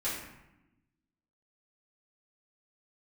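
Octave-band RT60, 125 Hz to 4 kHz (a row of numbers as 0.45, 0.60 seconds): 1.4, 1.4, 0.90, 0.90, 0.85, 0.60 seconds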